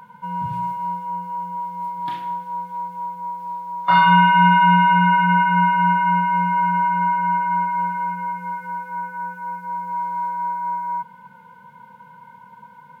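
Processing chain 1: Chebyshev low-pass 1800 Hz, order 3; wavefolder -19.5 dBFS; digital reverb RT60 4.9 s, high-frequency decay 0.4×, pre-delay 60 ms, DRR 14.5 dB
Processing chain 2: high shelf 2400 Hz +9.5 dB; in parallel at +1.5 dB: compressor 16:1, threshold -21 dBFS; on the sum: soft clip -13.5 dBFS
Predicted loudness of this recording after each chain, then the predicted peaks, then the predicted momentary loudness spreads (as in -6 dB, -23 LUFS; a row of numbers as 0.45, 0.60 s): -24.5, -18.5 LUFS; -16.5, -13.5 dBFS; 8, 21 LU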